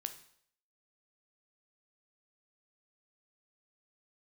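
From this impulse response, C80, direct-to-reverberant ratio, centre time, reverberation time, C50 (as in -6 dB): 15.5 dB, 8.0 dB, 9 ms, 0.65 s, 12.0 dB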